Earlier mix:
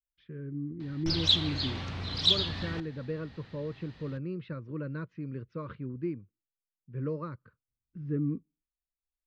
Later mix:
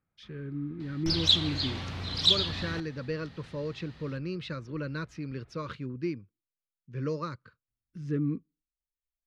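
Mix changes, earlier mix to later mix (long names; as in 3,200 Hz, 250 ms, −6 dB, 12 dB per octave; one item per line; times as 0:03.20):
speech: remove head-to-tape spacing loss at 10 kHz 40 dB
first sound: unmuted
master: remove high-frequency loss of the air 57 metres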